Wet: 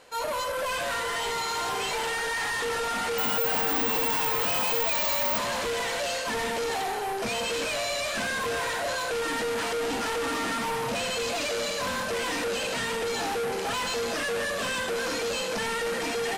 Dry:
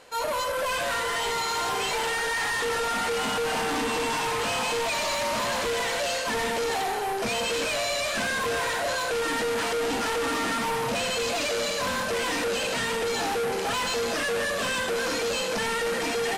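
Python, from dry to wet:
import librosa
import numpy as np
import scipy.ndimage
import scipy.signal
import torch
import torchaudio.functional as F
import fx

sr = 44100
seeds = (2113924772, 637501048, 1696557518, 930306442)

y = fx.resample_bad(x, sr, factor=2, down='none', up='zero_stuff', at=(3.18, 5.38))
y = F.gain(torch.from_numpy(y), -2.0).numpy()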